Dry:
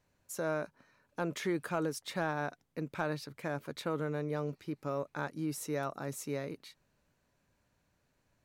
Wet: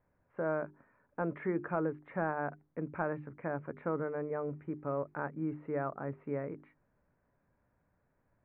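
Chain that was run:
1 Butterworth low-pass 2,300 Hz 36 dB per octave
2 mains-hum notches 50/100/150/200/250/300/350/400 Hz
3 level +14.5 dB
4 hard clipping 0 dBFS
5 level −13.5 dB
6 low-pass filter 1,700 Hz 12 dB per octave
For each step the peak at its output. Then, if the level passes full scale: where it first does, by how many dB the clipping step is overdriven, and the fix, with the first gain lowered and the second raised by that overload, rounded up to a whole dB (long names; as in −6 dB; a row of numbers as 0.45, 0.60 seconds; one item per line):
−20.0, −20.0, −5.5, −5.5, −19.0, −20.0 dBFS
no step passes full scale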